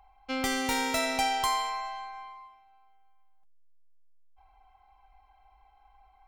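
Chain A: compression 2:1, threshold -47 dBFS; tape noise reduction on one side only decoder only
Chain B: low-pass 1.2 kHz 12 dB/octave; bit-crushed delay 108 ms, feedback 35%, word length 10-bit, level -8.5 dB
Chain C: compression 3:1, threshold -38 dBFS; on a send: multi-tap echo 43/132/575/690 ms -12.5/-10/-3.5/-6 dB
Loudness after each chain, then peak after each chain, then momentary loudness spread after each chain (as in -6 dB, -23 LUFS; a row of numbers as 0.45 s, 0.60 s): -41.0 LUFS, -33.0 LUFS, -36.5 LUFS; -25.0 dBFS, -20.0 dBFS, -23.0 dBFS; 11 LU, 15 LU, 13 LU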